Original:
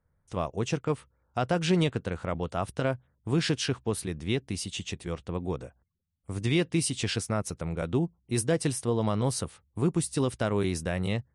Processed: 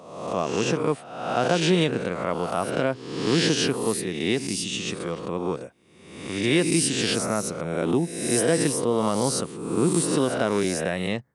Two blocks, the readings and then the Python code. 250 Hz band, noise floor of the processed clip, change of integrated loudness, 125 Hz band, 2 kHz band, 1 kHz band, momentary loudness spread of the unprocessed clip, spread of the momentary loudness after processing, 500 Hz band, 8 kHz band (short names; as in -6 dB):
+5.5 dB, -45 dBFS, +5.5 dB, 0.0 dB, +7.0 dB, +6.5 dB, 9 LU, 8 LU, +6.5 dB, +8.0 dB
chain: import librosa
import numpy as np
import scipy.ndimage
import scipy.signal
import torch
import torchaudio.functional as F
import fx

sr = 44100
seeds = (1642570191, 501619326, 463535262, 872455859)

y = fx.spec_swells(x, sr, rise_s=0.96)
y = scipy.signal.sosfilt(scipy.signal.cheby1(2, 1.0, 210.0, 'highpass', fs=sr, output='sos'), y)
y = y * librosa.db_to_amplitude(4.0)